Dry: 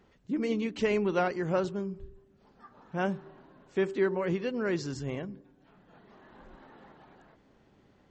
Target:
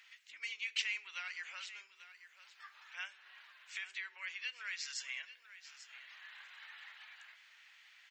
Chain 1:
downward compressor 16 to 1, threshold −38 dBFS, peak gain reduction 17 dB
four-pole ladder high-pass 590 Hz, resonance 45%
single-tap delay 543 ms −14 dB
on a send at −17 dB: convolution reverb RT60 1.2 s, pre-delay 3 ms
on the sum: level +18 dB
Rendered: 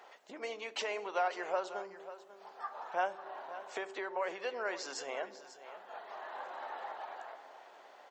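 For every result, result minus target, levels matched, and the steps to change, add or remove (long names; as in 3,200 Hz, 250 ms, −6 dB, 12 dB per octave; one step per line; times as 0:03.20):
echo 298 ms early; 2,000 Hz band −4.0 dB
change: single-tap delay 841 ms −14 dB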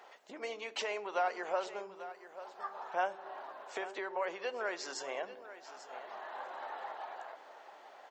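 2,000 Hz band −4.0 dB
change: four-pole ladder high-pass 1,900 Hz, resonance 45%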